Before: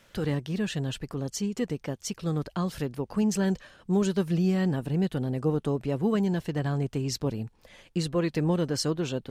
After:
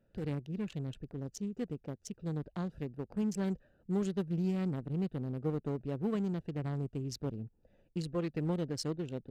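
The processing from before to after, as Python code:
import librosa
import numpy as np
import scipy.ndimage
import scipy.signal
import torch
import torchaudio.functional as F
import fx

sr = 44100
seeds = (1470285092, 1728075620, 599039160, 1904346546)

y = fx.wiener(x, sr, points=41)
y = y * 10.0 ** (-7.5 / 20.0)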